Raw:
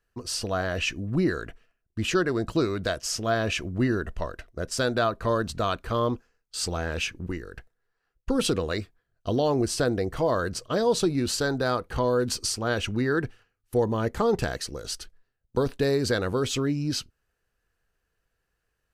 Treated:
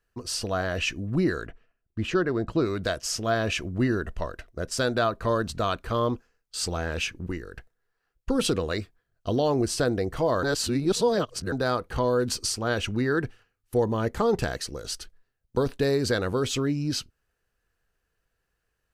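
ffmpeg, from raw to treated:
-filter_complex "[0:a]asplit=3[a][b][c];[a]afade=t=out:st=1.46:d=0.02[d];[b]lowpass=f=2k:p=1,afade=t=in:st=1.46:d=0.02,afade=t=out:st=2.65:d=0.02[e];[c]afade=t=in:st=2.65:d=0.02[f];[d][e][f]amix=inputs=3:normalize=0,asplit=3[g][h][i];[g]atrim=end=10.432[j];[h]atrim=start=10.428:end=11.522,asetpts=PTS-STARTPTS,areverse[k];[i]atrim=start=11.518[l];[j][k]acrossfade=d=0.004:c1=hsin:c2=hsin[m];[m][l]acrossfade=d=0.004:c1=hsin:c2=hsin"

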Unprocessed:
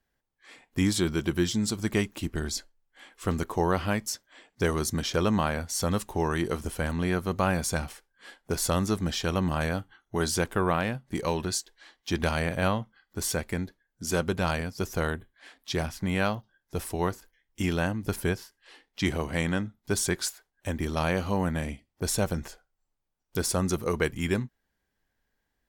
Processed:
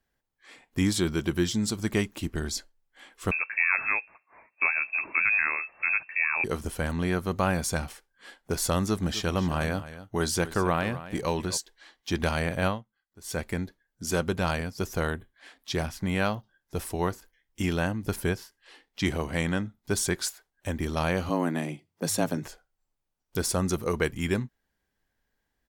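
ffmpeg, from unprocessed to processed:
-filter_complex "[0:a]asettb=1/sr,asplit=3[a][b][c];[a]atrim=end=3.314[d];[b]atrim=start=3.31:end=6.44,asetpts=PTS-STARTPTS,afade=t=in:d=0.004:c=qsin,afade=t=out:st=3.126:d=0.004:c=qsin,lowpass=f=2.3k:t=q:w=0.5098,lowpass=f=2.3k:t=q:w=0.6013,lowpass=f=2.3k:t=q:w=0.9,lowpass=f=2.3k:t=q:w=2.563,afreqshift=-2700[e];[c]atrim=start=6.436[f];[d][e]acrossfade=d=0.004:c1=hsin:c2=qsin[g];[g][f]acrossfade=d=0.004:c1=qsin:c2=hsin,asplit=3[h][i][j];[h]afade=t=out:st=9.02:d=0.02[k];[i]aecho=1:1:255:0.188,afade=t=in:st=9.02:d=0.02,afade=t=out:st=11.56:d=0.02[l];[j]afade=t=in:st=11.56:d=0.02[m];[k][l][m]amix=inputs=3:normalize=0,asettb=1/sr,asplit=3[n][o][p];[n]atrim=end=21.294[q];[o]atrim=start=21.29:end=22.46,asetpts=PTS-STARTPTS,afade=t=in:d=0.004:c=qsin,afade=t=out:st=1.166:d=0.004:c=qsin,afreqshift=79[r];[p]atrim=start=22.456[s];[q][r]acrossfade=d=0.004:c1=hsin:c2=qsin[t];[t][s]acrossfade=d=0.004:c1=qsin:c2=hsin,asplit=3[u][v][w];[u]atrim=end=12.83,asetpts=PTS-STARTPTS,afade=t=out:st=12.66:d=0.17:silence=0.125893[x];[v]atrim=start=12.83:end=13.23,asetpts=PTS-STARTPTS,volume=-18dB[y];[w]atrim=start=13.23,asetpts=PTS-STARTPTS,afade=t=in:d=0.17:silence=0.125893[z];[x][y][z]concat=n=3:v=0:a=1"

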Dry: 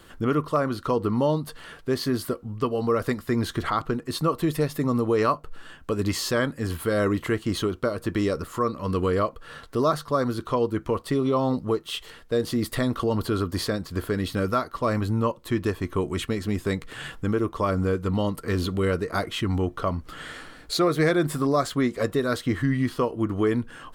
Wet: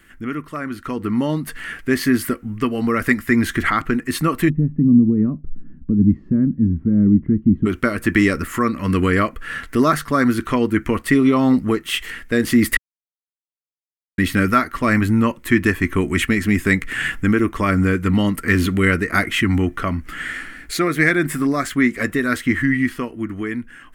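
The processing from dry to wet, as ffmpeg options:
-filter_complex "[0:a]asplit=3[a][b][c];[a]afade=t=out:st=4.48:d=0.02[d];[b]lowpass=f=200:t=q:w=2.1,afade=t=in:st=4.48:d=0.02,afade=t=out:st=7.65:d=0.02[e];[c]afade=t=in:st=7.65:d=0.02[f];[d][e][f]amix=inputs=3:normalize=0,asplit=3[g][h][i];[g]atrim=end=12.77,asetpts=PTS-STARTPTS,afade=t=out:st=12.766:d=0.004:c=hsin[j];[h]atrim=start=12.77:end=14.18,asetpts=PTS-STARTPTS,volume=0[k];[i]atrim=start=14.18,asetpts=PTS-STARTPTS,afade=t=in:d=0.004:c=hsin[l];[j][k][l]concat=n=3:v=0:a=1,equalizer=f=125:t=o:w=1:g=-8,equalizer=f=250:t=o:w=1:g=4,equalizer=f=500:t=o:w=1:g=-11,equalizer=f=1k:t=o:w=1:g=-9,equalizer=f=2k:t=o:w=1:g=12,equalizer=f=4k:t=o:w=1:g=-11,dynaudnorm=f=120:g=21:m=13dB"

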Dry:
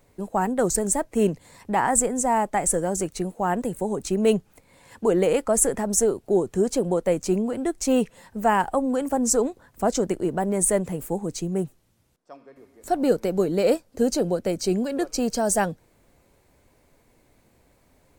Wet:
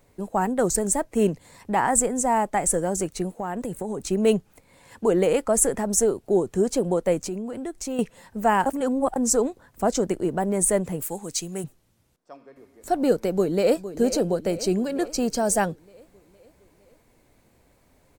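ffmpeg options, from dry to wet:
-filter_complex "[0:a]asettb=1/sr,asplit=3[a][b][c];[a]atrim=end=3.394[d];[b]atrim=start=3.39:end=4.11,asetpts=PTS-STARTPTS,afade=t=in:d=0.004:c=qsin,afade=t=out:st=0.716:d=0.004:c=qsin,acompressor=threshold=-25dB:ratio=6:attack=3.2:release=140:knee=1:detection=peak[e];[c]atrim=start=4.106[f];[d][e]acrossfade=d=0.004:c1=hsin:c2=qsin[g];[g][f]acrossfade=d=0.004:c1=qsin:c2=hsin,asettb=1/sr,asplit=3[h][i][j];[h]atrim=end=7.274[k];[i]atrim=start=7.27:end=7.99,asetpts=PTS-STARTPTS,afade=t=in:d=0.004:c=qsin,afade=t=out:st=0.716:d=0.004:c=qsin,acompressor=threshold=-31dB:ratio=2.5:attack=3.2:release=140:knee=1:detection=peak[l];[j]atrim=start=7.986[m];[k][l]acrossfade=d=0.004:c1=hsin:c2=qsin[n];[n][m]acrossfade=d=0.004:c1=qsin:c2=hsin,asettb=1/sr,asplit=3[o][p][q];[o]atrim=end=11.024[r];[p]atrim=start=11.02:end=11.64,asetpts=PTS-STARTPTS,afade=t=in:d=0.004:c=qsin,afade=t=out:st=0.616:d=0.004:c=qsin,tiltshelf=f=1.2k:g=-8[s];[q]atrim=start=11.636[t];[r][s]acrossfade=d=0.004:c1=hsin:c2=qsin[u];[u][t]acrossfade=d=0.004:c1=qsin:c2=hsin,asplit=2[v][w];[w]afade=t=in:st=13.3:d=0.01,afade=t=out:st=13.89:d=0.01,aecho=0:1:460|920|1380|1840|2300|2760|3220:0.237137|0.142282|0.0853695|0.0512217|0.030733|0.0184398|0.0110639[x];[v][x]amix=inputs=2:normalize=0,asplit=3[y][z][aa];[y]atrim=end=8.662[ab];[z]atrim=start=8.658:end=9.162,asetpts=PTS-STARTPTS,areverse[ac];[aa]atrim=start=9.158[ad];[ab][ac]acrossfade=d=0.004:c1=hsin:c2=hsin[ae];[ae][ad]acrossfade=d=0.004:c1=hsin:c2=hsin"

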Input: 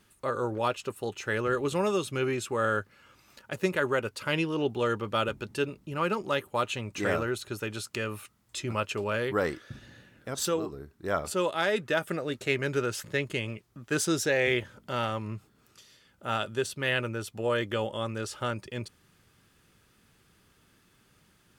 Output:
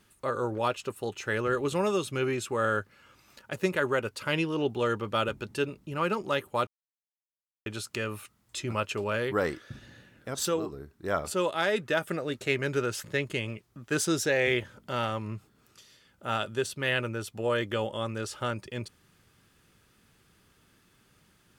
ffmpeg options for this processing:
-filter_complex "[0:a]asplit=3[a][b][c];[a]atrim=end=6.67,asetpts=PTS-STARTPTS,afade=t=out:st=6.666:d=0.004:c=hsin[d];[b]atrim=start=6.67:end=7.66,asetpts=PTS-STARTPTS,volume=0[e];[c]atrim=start=7.66,asetpts=PTS-STARTPTS,afade=t=in:d=0.004:c=hsin[f];[d][e][f]concat=n=3:v=0:a=1"

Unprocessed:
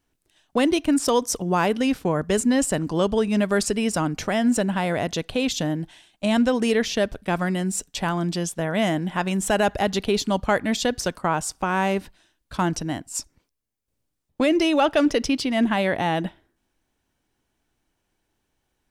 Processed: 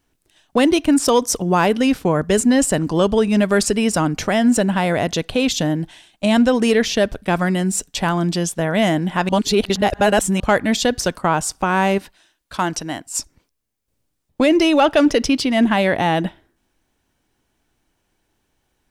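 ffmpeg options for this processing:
-filter_complex "[0:a]asettb=1/sr,asplit=3[a][b][c];[a]atrim=end=11.984[d];[b]atrim=start=11.98:end=13.14,asetpts=PTS-STARTPTS,afade=t=in:d=0.004:c=qsin,afade=t=out:st=1.156:d=0.004:c=qsin,lowshelf=f=300:g=-11[e];[c]atrim=start=13.136[f];[d][e]acrossfade=d=0.004:c1=hsin:c2=qsin[g];[g][f]acrossfade=d=0.004:c1=qsin:c2=hsin,asplit=3[h][i][j];[h]atrim=end=9.292[k];[i]atrim=start=9.288:end=10.402,asetpts=PTS-STARTPTS,areverse[l];[j]atrim=start=10.398[m];[k][l]acrossfade=d=0.004:c1=hsin:c2=hsin[n];[n][m]acrossfade=d=0.004:c1=hsin:c2=hsin,acontrast=41"

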